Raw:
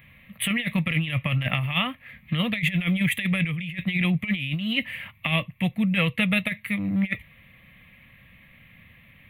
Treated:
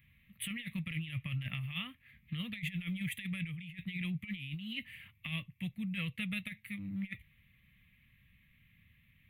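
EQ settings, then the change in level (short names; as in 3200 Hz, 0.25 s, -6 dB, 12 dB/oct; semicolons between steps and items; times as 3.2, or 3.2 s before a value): passive tone stack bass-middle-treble 6-0-2; +2.5 dB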